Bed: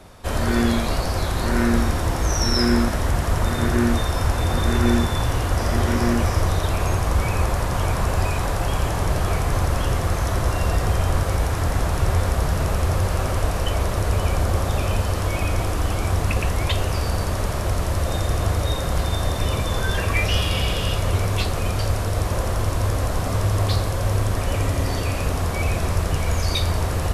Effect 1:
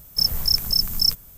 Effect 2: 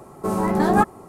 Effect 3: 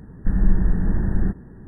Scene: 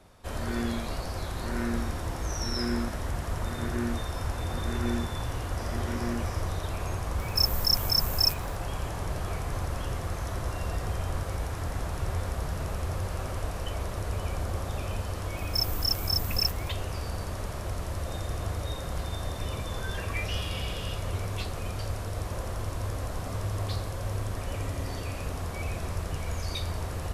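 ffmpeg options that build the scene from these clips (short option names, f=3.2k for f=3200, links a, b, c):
-filter_complex "[1:a]asplit=2[a][b];[0:a]volume=-11dB[c];[a]aeval=exprs='sgn(val(0))*max(abs(val(0))-0.00251,0)':c=same,atrim=end=1.37,asetpts=PTS-STARTPTS,volume=-5dB,afade=t=in:d=0.004:c=hsin,afade=t=out:st=1.366:d=0.004:c=hsin,adelay=7190[d];[b]atrim=end=1.37,asetpts=PTS-STARTPTS,volume=-8.5dB,afade=t=in:d=0.004:c=hsin,afade=t=out:st=1.366:d=0.004:c=hsin,adelay=15370[e];[c][d][e]amix=inputs=3:normalize=0"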